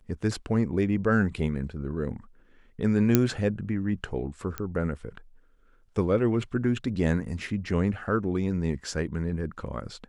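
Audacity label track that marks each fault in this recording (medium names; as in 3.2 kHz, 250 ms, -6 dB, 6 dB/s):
3.150000	3.150000	pop -5 dBFS
4.580000	4.580000	pop -15 dBFS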